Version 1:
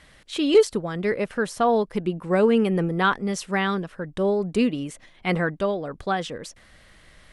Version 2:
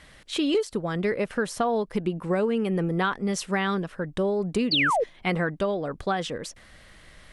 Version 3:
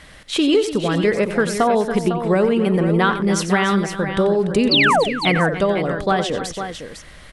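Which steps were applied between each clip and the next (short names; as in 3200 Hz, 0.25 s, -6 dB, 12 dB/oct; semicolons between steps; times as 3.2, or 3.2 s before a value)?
compressor 6:1, threshold -23 dBFS, peak gain reduction 12 dB; painted sound fall, 4.71–5.04, 410–4900 Hz -24 dBFS; gain +1.5 dB
tapped delay 90/292/503 ms -11.5/-13/-9 dB; gain +7.5 dB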